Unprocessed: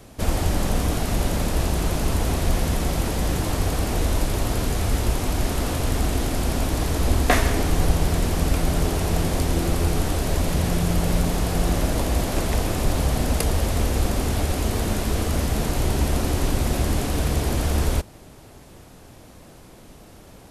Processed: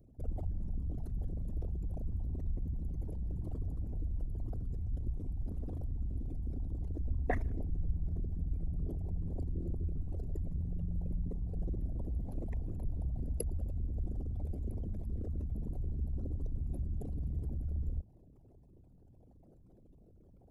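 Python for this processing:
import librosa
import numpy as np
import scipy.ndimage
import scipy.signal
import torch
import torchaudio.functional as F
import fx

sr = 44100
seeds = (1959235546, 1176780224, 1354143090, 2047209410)

y = fx.envelope_sharpen(x, sr, power=3.0)
y = F.preemphasis(torch.from_numpy(y), 0.8).numpy()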